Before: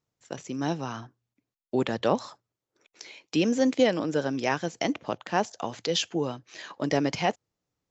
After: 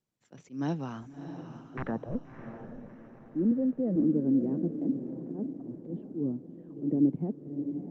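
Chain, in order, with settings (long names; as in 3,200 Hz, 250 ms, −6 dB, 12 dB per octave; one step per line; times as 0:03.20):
Chebyshev high-pass filter 210 Hz, order 2
0:01.77–0:02.23: wrap-around overflow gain 18 dB
bass and treble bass +13 dB, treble −13 dB
0:04.67–0:05.33: downward compressor 16 to 1, threshold −27 dBFS, peak gain reduction 11 dB
brickwall limiter −16.5 dBFS, peak gain reduction 8 dB
0:03.51–0:03.96: comb filter 1.6 ms, depth 94%
low-pass filter sweep 6,800 Hz → 320 Hz, 0:01.46–0:02.26
volume swells 125 ms
notch filter 6,700 Hz, Q 27
feedback delay with all-pass diffusion 644 ms, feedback 44%, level −8.5 dB
level −6 dB
Opus 24 kbit/s 48,000 Hz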